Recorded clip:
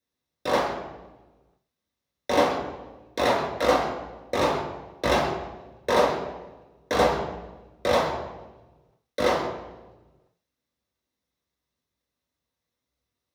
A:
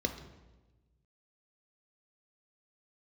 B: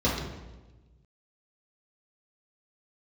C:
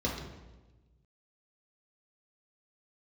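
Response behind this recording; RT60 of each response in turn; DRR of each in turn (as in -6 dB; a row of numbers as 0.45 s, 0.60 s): C; 1.2 s, 1.2 s, 1.2 s; 6.0 dB, -7.0 dB, -3.0 dB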